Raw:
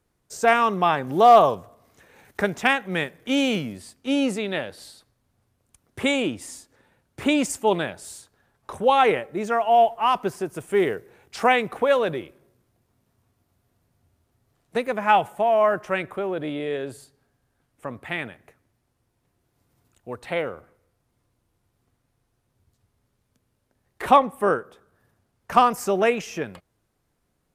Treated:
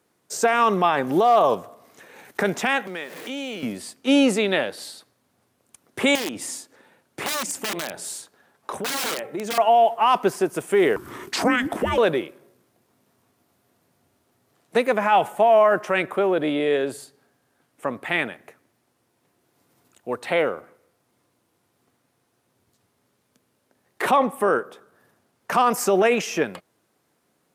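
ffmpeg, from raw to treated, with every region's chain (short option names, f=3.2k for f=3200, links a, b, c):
-filter_complex "[0:a]asettb=1/sr,asplit=3[a][b][c];[a]atrim=end=2.874[d];[b]atrim=start=2.87:end=3.63,asetpts=PTS-STARTPTS,afade=t=in:d=0.004:c=qsin,afade=t=out:st=0.756:d=0.004:c=qsin,aeval=exprs='val(0)+0.5*0.0106*sgn(val(0))':c=same,highpass=230,acompressor=threshold=-39dB:ratio=3:attack=3.2:release=140:knee=1:detection=peak[e];[c]atrim=start=3.626[f];[d][e]acrossfade=d=0.004:c1=hsin:c2=qsin[g];[g][f]acrossfade=d=0.004:c1=qsin:c2=hsin,asettb=1/sr,asplit=3[h][i][j];[h]atrim=end=6.154[k];[i]atrim=start=6.15:end=9.58,asetpts=PTS-STARTPTS,afade=t=in:d=0.004:c=qsin,afade=t=out:st=3.426:d=0.004:c=qsin,bandreject=f=60:t=h:w=6,bandreject=f=120:t=h:w=6,bandreject=f=180:t=h:w=6,aeval=exprs='(mod(7.94*val(0)+1,2)-1)/7.94':c=same,acompressor=threshold=-31dB:ratio=10:attack=3.2:release=140:knee=1:detection=peak[l];[j]atrim=start=9.576[m];[k][l]acrossfade=d=0.004:c1=hsin:c2=qsin[n];[n][m]acrossfade=d=0.004:c1=qsin:c2=hsin,asettb=1/sr,asplit=3[o][p][q];[o]atrim=end=10.964[r];[p]atrim=start=10.96:end=11.98,asetpts=PTS-STARTPTS,afade=t=in:d=0.004:c=qsin,afade=t=out:st=1.016:d=0.004:c=qsin,afreqshift=-480,agate=range=-33dB:threshold=-52dB:ratio=3:release=100:detection=peak,acompressor=mode=upward:threshold=-25dB:ratio=2.5:attack=3.2:release=140:knee=2.83:detection=peak[s];[q]atrim=start=11.976[t];[r][s]acrossfade=d=0.004:c1=hsin:c2=qsin[u];[u][t]acrossfade=d=0.004:c1=qsin:c2=hsin,alimiter=limit=-16dB:level=0:latency=1:release=33,highpass=210,volume=7dB"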